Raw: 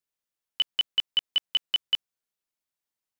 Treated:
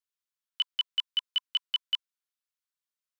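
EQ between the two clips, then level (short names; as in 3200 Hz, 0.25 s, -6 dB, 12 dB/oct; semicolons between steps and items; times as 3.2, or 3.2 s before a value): rippled Chebyshev high-pass 1000 Hz, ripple 3 dB; -3.0 dB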